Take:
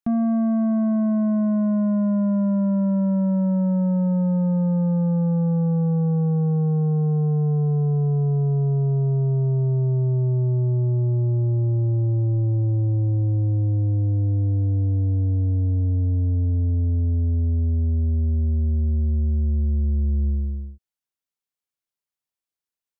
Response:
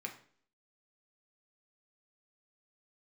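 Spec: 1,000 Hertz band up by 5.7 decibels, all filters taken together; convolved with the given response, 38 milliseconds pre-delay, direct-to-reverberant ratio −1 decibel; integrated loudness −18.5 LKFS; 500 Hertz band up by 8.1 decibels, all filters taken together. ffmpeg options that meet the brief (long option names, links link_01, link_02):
-filter_complex "[0:a]equalizer=frequency=500:width_type=o:gain=9,equalizer=frequency=1000:width_type=o:gain=3.5,asplit=2[link_01][link_02];[1:a]atrim=start_sample=2205,adelay=38[link_03];[link_02][link_03]afir=irnorm=-1:irlink=0,volume=1.5dB[link_04];[link_01][link_04]amix=inputs=2:normalize=0,volume=-1.5dB"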